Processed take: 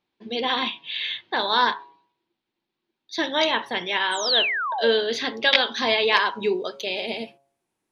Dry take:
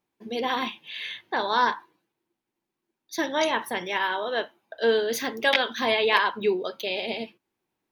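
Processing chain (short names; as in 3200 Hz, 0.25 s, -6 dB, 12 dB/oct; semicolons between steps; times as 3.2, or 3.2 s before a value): painted sound fall, 4.11–4.89, 510–9100 Hz -28 dBFS; de-hum 138.2 Hz, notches 8; low-pass sweep 3900 Hz -> 9900 Hz, 5.22–7.29; gain +1 dB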